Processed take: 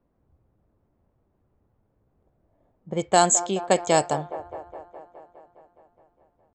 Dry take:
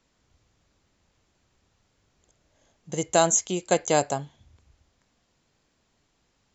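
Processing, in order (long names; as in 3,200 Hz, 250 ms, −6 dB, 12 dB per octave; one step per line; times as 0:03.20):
low-pass that shuts in the quiet parts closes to 710 Hz, open at −18 dBFS
delay with a band-pass on its return 208 ms, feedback 69%, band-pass 660 Hz, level −12.5 dB
pitch shifter +1 semitone
level +2 dB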